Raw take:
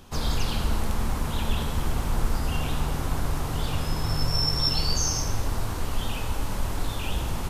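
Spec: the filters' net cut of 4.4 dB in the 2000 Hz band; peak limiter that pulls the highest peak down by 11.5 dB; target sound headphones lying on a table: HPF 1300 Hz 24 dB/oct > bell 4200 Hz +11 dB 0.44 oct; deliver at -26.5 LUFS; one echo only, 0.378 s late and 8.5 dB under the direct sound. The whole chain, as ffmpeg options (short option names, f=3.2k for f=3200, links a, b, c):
-af "equalizer=f=2k:t=o:g=-6.5,alimiter=limit=-22.5dB:level=0:latency=1,highpass=f=1.3k:w=0.5412,highpass=f=1.3k:w=1.3066,equalizer=f=4.2k:t=o:w=0.44:g=11,aecho=1:1:378:0.376,volume=7dB"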